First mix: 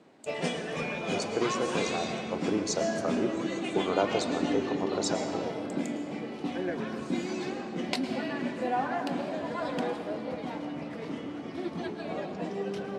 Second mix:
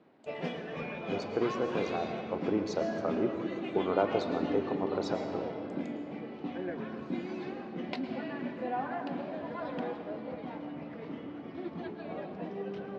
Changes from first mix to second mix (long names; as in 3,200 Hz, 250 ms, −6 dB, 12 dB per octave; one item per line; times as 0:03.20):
background −4.0 dB
master: add high-frequency loss of the air 250 metres